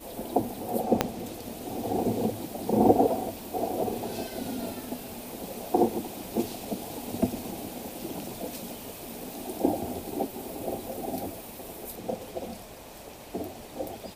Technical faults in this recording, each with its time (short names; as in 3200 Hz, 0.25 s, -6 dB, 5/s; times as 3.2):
1.01 pop -6 dBFS